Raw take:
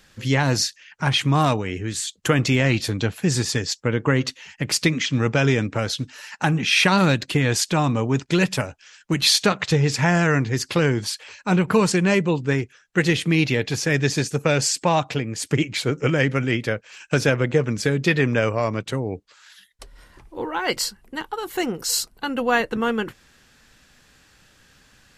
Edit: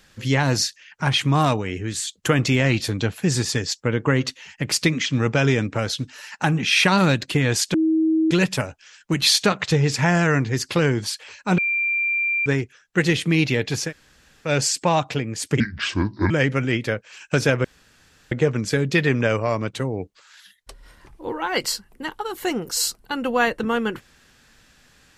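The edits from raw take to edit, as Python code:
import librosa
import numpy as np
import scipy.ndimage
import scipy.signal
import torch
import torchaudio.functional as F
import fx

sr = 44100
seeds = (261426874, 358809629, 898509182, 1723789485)

y = fx.edit(x, sr, fx.bleep(start_s=7.74, length_s=0.57, hz=319.0, db=-15.5),
    fx.bleep(start_s=11.58, length_s=0.88, hz=2370.0, db=-19.0),
    fx.room_tone_fill(start_s=13.88, length_s=0.6, crossfade_s=0.1),
    fx.speed_span(start_s=15.6, length_s=0.5, speed=0.71),
    fx.insert_room_tone(at_s=17.44, length_s=0.67), tone=tone)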